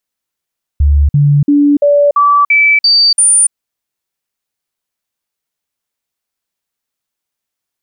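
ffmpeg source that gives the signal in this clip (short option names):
-f lavfi -i "aevalsrc='0.562*clip(min(mod(t,0.34),0.29-mod(t,0.34))/0.005,0,1)*sin(2*PI*72.2*pow(2,floor(t/0.34)/1)*mod(t,0.34))':d=2.72:s=44100"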